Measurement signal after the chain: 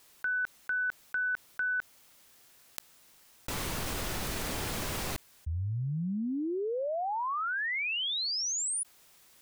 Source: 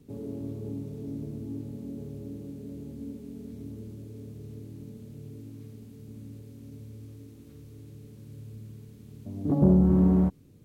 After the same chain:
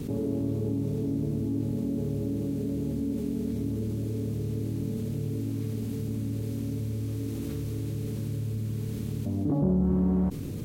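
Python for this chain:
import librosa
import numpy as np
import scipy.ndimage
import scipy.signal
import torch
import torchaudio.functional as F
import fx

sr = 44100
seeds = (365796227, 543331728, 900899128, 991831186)

y = fx.env_flatten(x, sr, amount_pct=70)
y = y * 10.0 ** (-6.5 / 20.0)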